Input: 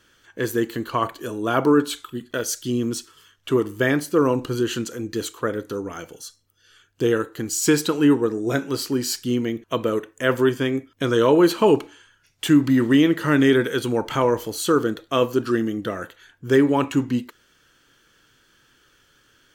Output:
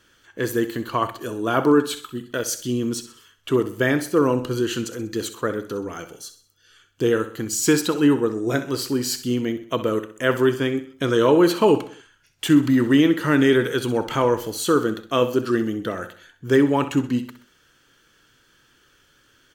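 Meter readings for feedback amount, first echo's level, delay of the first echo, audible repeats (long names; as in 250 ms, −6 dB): 44%, −13.0 dB, 64 ms, 4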